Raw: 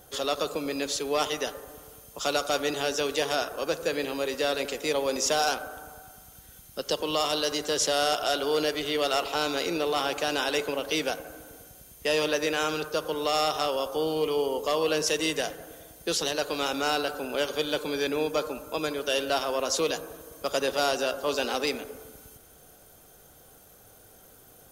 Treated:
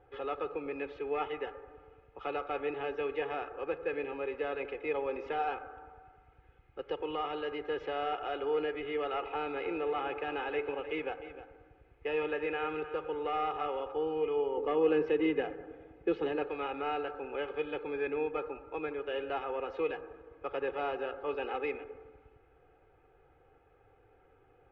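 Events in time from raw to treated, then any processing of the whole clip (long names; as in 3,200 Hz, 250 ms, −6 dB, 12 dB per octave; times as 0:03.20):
0:09.31–0:13.92: single-tap delay 306 ms −13.5 dB
0:14.57–0:16.48: parametric band 250 Hz +10.5 dB 1.7 octaves
whole clip: Chebyshev low-pass filter 2,500 Hz, order 4; comb filter 2.4 ms, depth 81%; level −8.5 dB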